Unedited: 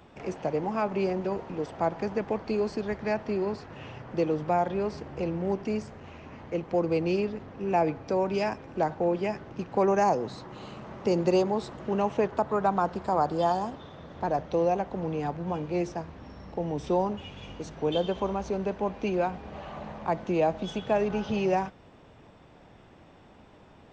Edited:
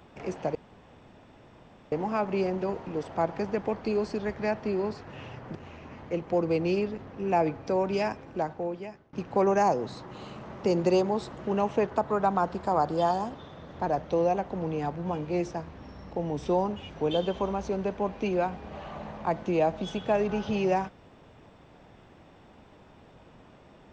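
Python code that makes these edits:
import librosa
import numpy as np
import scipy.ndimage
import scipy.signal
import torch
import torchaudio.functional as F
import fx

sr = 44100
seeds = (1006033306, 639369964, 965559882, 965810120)

y = fx.edit(x, sr, fx.insert_room_tone(at_s=0.55, length_s=1.37),
    fx.cut(start_s=4.18, length_s=1.78),
    fx.fade_out_to(start_s=8.5, length_s=1.04, floor_db=-24.0),
    fx.cut(start_s=17.31, length_s=0.4), tone=tone)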